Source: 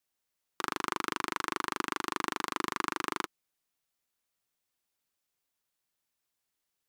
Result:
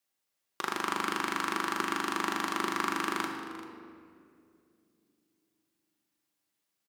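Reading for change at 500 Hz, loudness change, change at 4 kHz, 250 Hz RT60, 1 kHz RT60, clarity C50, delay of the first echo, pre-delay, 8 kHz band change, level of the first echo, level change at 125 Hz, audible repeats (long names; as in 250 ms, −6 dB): +2.5 dB, +2.5 dB, +2.0 dB, 3.7 s, 2.1 s, 4.5 dB, 390 ms, 4 ms, +1.5 dB, −16.5 dB, +2.5 dB, 1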